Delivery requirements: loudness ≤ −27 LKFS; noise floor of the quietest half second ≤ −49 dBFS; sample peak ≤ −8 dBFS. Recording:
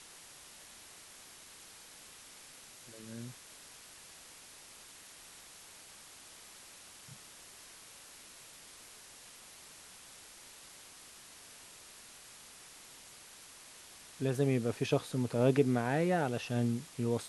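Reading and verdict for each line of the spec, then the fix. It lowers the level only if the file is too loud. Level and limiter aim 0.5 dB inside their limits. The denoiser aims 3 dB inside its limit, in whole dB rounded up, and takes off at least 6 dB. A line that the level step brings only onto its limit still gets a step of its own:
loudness −32.5 LKFS: in spec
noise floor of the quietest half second −54 dBFS: in spec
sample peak −14.0 dBFS: in spec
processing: no processing needed

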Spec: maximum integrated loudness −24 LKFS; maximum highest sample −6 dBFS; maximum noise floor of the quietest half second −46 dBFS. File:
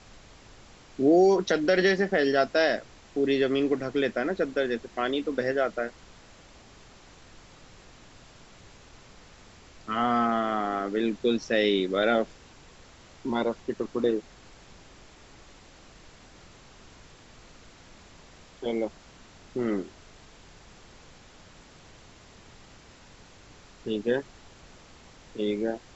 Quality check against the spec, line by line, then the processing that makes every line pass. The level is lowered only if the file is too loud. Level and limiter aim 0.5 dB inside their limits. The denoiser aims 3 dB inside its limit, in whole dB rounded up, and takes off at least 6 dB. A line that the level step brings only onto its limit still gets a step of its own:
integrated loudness −27.0 LKFS: in spec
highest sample −11.0 dBFS: in spec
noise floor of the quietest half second −52 dBFS: in spec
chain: no processing needed

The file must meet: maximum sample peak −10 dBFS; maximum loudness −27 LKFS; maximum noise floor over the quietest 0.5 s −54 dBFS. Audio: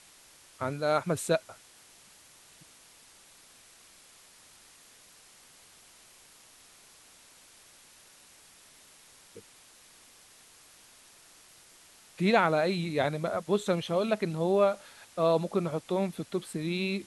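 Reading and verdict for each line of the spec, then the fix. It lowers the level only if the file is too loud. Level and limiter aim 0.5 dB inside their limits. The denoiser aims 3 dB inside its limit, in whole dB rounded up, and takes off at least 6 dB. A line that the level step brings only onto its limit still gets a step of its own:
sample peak −9.5 dBFS: out of spec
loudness −29.0 LKFS: in spec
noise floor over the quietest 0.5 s −57 dBFS: in spec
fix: brickwall limiter −10.5 dBFS

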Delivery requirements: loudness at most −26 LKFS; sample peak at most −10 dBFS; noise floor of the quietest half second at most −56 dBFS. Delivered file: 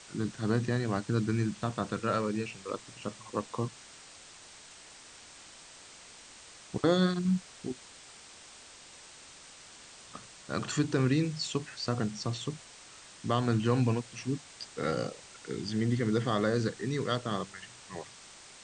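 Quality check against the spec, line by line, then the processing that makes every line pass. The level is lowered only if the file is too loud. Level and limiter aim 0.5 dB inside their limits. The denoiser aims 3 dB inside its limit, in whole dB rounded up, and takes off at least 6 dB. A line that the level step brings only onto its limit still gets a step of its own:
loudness −32.0 LKFS: in spec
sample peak −13.5 dBFS: in spec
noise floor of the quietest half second −52 dBFS: out of spec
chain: broadband denoise 7 dB, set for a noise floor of −52 dBFS

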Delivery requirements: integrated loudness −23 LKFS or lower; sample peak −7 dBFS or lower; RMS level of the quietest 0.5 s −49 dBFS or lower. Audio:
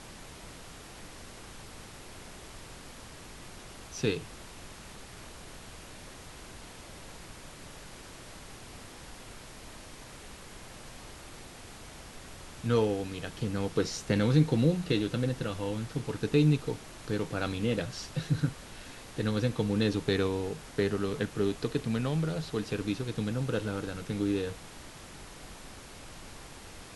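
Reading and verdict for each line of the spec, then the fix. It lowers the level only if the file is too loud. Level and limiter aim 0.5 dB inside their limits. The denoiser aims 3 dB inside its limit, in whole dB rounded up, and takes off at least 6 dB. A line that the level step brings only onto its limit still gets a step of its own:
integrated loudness −31.0 LKFS: in spec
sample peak −12.0 dBFS: in spec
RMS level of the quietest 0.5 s −47 dBFS: out of spec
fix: broadband denoise 6 dB, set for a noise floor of −47 dBFS

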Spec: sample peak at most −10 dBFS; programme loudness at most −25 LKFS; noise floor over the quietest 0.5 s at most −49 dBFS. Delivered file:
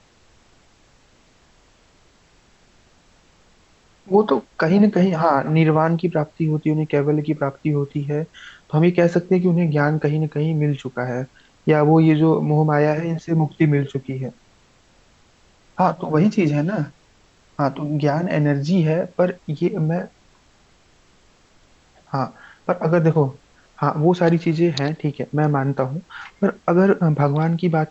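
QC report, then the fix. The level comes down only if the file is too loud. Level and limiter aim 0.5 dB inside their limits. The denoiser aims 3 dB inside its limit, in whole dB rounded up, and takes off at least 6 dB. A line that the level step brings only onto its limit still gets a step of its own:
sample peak −4.5 dBFS: out of spec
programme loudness −19.5 LKFS: out of spec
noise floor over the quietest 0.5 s −55 dBFS: in spec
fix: level −6 dB

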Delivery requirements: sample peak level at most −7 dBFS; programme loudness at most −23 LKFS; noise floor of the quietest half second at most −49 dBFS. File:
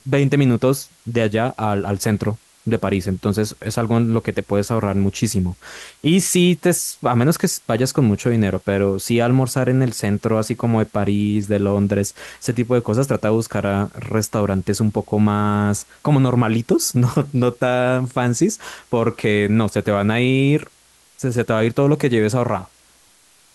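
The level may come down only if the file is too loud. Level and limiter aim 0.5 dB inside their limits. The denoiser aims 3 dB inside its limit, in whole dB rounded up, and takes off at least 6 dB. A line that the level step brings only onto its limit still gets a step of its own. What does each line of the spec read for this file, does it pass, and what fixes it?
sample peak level −6.0 dBFS: out of spec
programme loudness −19.0 LKFS: out of spec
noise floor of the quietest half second −53 dBFS: in spec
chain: level −4.5 dB

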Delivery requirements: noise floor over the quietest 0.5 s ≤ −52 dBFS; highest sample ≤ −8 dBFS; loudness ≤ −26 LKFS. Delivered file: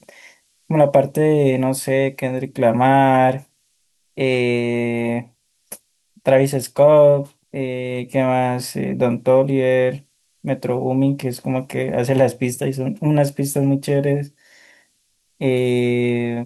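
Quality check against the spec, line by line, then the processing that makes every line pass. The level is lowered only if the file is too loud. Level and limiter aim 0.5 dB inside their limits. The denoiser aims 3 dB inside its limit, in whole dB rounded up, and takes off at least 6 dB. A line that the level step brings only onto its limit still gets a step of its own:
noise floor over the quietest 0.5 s −65 dBFS: in spec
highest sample −3.5 dBFS: out of spec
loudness −18.5 LKFS: out of spec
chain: level −8 dB

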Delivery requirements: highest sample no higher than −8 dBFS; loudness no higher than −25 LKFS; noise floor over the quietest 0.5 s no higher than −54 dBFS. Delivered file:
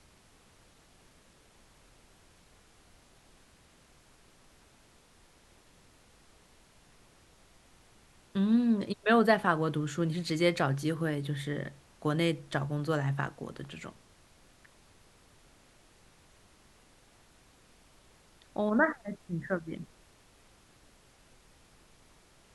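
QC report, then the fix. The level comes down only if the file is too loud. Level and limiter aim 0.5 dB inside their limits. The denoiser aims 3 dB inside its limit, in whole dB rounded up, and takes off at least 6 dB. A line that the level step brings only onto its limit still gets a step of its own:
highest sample −9.5 dBFS: in spec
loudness −30.5 LKFS: in spec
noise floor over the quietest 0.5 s −61 dBFS: in spec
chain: no processing needed

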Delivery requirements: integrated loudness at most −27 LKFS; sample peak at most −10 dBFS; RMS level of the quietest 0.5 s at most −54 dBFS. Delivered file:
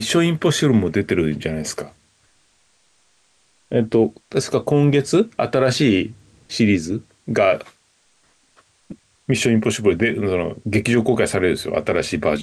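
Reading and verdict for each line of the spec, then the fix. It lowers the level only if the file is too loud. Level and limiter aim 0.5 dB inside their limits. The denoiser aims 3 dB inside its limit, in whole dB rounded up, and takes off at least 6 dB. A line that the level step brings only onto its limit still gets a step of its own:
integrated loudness −19.5 LKFS: out of spec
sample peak −6.0 dBFS: out of spec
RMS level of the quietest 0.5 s −60 dBFS: in spec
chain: level −8 dB

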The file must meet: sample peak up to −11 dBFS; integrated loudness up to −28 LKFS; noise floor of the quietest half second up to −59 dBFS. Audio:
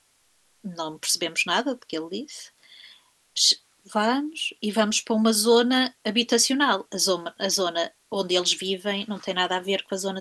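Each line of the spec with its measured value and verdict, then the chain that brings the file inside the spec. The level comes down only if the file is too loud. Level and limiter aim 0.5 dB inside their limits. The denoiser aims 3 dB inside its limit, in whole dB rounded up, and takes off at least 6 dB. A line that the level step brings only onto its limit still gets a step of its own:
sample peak −4.5 dBFS: out of spec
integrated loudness −23.5 LKFS: out of spec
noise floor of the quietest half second −64 dBFS: in spec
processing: level −5 dB
brickwall limiter −11.5 dBFS

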